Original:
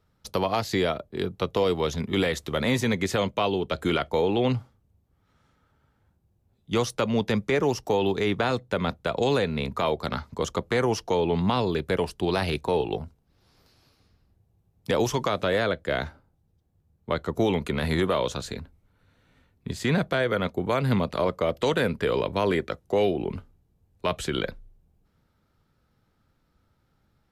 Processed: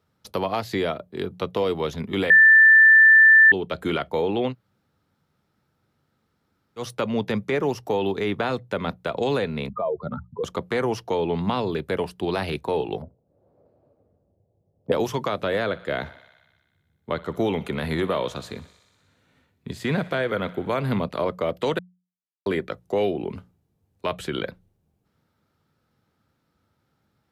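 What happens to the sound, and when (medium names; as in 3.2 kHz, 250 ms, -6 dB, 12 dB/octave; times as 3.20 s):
2.30–3.52 s: bleep 1.77 kHz -8.5 dBFS
4.50–6.81 s: room tone, crossfade 0.10 s
9.69–10.44 s: spectral contrast enhancement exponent 2.6
13.02–14.92 s: resonant low-pass 580 Hz, resonance Q 4.6
15.61–20.98 s: thinning echo 61 ms, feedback 77%, high-pass 380 Hz, level -18.5 dB
21.79–22.46 s: mute
whole clip: dynamic bell 6.6 kHz, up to -7 dB, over -51 dBFS, Q 1; high-pass 93 Hz; hum notches 60/120/180 Hz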